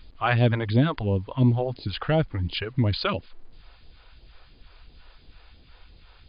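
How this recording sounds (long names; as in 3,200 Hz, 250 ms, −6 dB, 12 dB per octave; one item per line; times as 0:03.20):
phaser sweep stages 2, 2.9 Hz, lowest notch 160–1,400 Hz
a quantiser's noise floor 10 bits, dither none
MP2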